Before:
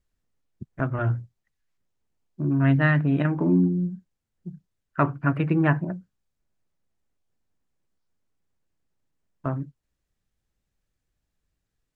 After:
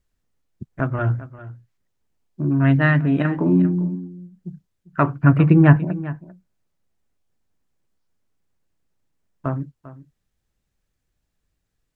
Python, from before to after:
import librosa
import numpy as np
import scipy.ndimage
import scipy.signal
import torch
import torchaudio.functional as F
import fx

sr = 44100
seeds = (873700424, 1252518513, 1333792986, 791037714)

y = fx.low_shelf(x, sr, hz=250.0, db=10.0, at=(5.23, 5.76))
y = y + 10.0 ** (-16.5 / 20.0) * np.pad(y, (int(397 * sr / 1000.0), 0))[:len(y)]
y = y * librosa.db_to_amplitude(3.5)